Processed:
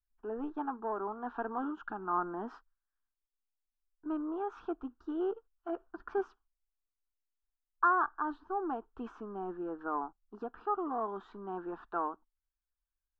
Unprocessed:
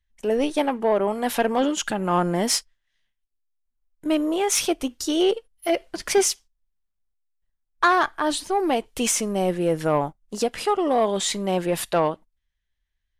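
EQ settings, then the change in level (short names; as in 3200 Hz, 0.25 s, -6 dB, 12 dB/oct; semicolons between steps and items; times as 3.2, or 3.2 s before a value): ladder low-pass 1600 Hz, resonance 60%; fixed phaser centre 560 Hz, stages 6; -2.5 dB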